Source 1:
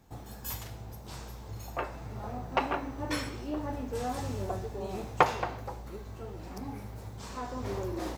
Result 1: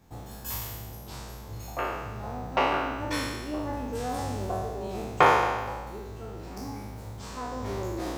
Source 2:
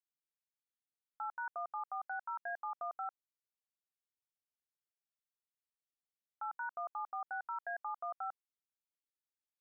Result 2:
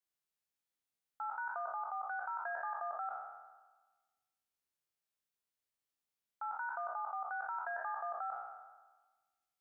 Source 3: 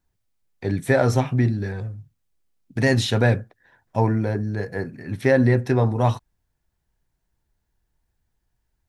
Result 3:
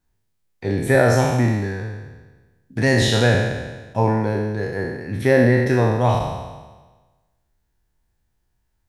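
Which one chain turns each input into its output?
peak hold with a decay on every bin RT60 1.29 s

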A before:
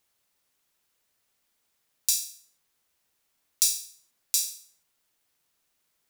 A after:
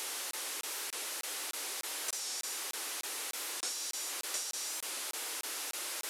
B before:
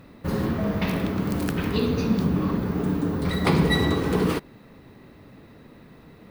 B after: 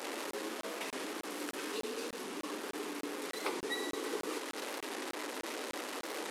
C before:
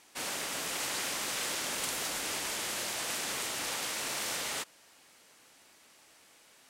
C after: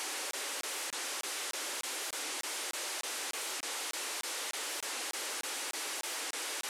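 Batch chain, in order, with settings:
linear delta modulator 64 kbit/s, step −23.5 dBFS
downward compressor 2 to 1, threshold −26 dBFS
Butterworth high-pass 300 Hz 36 dB per octave
notch filter 670 Hz, Q 15
regular buffer underruns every 0.30 s, samples 1,024, zero, from 0:00.31
wow of a warped record 45 rpm, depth 100 cents
level −8 dB

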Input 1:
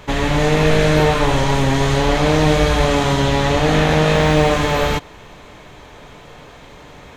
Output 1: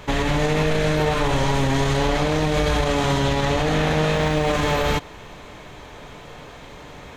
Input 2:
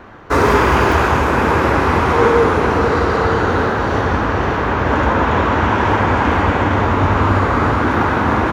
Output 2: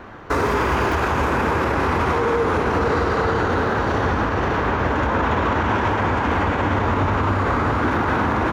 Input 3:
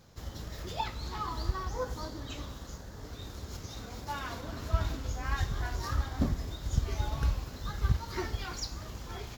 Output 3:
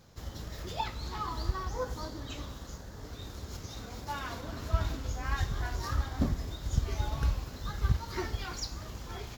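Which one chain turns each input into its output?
brickwall limiter −11.5 dBFS

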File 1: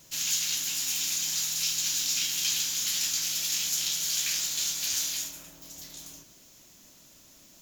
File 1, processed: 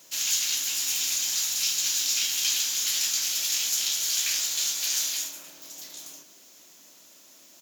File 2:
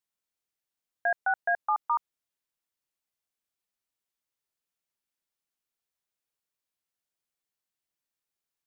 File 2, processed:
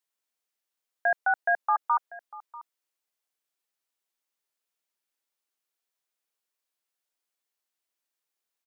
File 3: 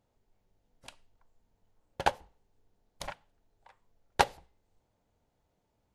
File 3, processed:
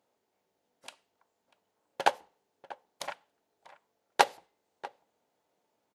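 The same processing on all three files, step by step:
high-pass filter 320 Hz 12 dB per octave
slap from a distant wall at 110 metres, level −18 dB
level +2.5 dB

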